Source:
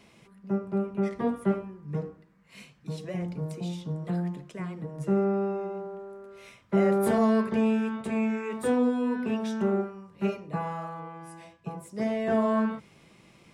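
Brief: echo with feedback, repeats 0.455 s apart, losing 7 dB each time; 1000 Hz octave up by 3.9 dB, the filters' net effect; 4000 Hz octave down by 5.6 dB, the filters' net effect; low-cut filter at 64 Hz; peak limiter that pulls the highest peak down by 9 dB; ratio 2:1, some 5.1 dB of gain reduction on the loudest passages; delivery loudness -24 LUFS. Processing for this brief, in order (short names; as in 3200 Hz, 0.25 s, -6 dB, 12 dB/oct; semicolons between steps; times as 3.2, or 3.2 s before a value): HPF 64 Hz; bell 1000 Hz +5.5 dB; bell 4000 Hz -8.5 dB; compressor 2:1, threshold -28 dBFS; limiter -26.5 dBFS; feedback echo 0.455 s, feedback 45%, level -7 dB; gain +11 dB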